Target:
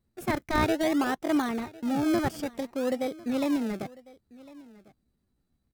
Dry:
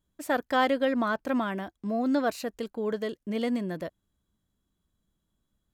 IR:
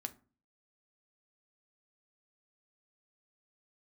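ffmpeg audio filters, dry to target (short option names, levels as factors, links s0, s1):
-filter_complex "[0:a]asplit=2[s0][s1];[s1]acrusher=samples=38:mix=1:aa=0.000001:lfo=1:lforange=38:lforate=0.57,volume=0.708[s2];[s0][s2]amix=inputs=2:normalize=0,aecho=1:1:1052:0.0841,asetrate=52444,aresample=44100,atempo=0.840896,equalizer=f=150:w=0.73:g=3.5,volume=0.668"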